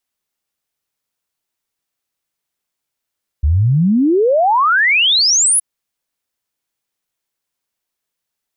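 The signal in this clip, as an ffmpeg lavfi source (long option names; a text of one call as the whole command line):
ffmpeg -f lavfi -i "aevalsrc='0.335*clip(min(t,2.17-t)/0.01,0,1)*sin(2*PI*68*2.17/log(11000/68)*(exp(log(11000/68)*t/2.17)-1))':duration=2.17:sample_rate=44100" out.wav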